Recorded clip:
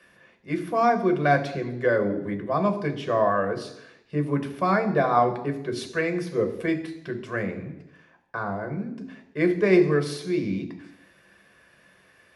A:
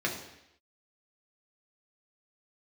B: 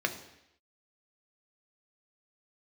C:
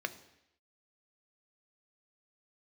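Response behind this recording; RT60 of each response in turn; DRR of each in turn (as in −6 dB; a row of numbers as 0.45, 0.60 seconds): B; 0.80, 0.80, 0.80 seconds; −2.0, 5.0, 9.5 decibels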